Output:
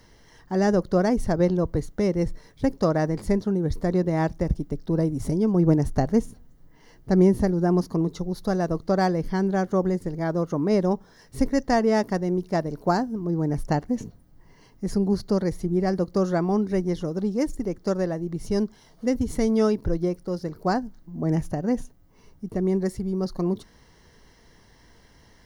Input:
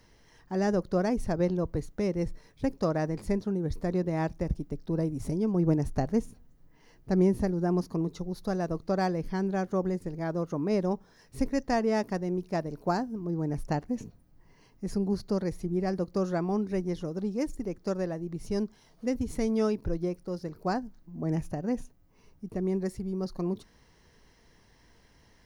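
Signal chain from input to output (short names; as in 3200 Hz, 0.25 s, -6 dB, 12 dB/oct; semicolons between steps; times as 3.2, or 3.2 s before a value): notch 2500 Hz, Q 7.9; gain +6 dB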